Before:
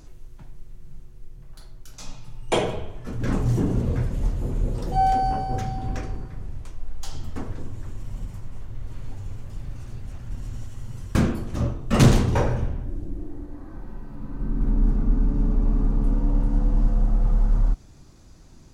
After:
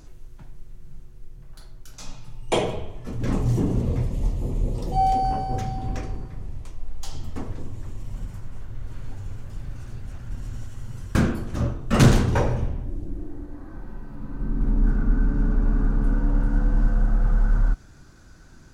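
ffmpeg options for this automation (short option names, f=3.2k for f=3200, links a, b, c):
-af "asetnsamples=n=441:p=0,asendcmd='2.35 equalizer g -7;3.94 equalizer g -14.5;5.25 equalizer g -4;8.14 equalizer g 5;12.39 equalizer g -4;13.07 equalizer g 4;14.84 equalizer g 15',equalizer=f=1.5k:t=o:w=0.33:g=2"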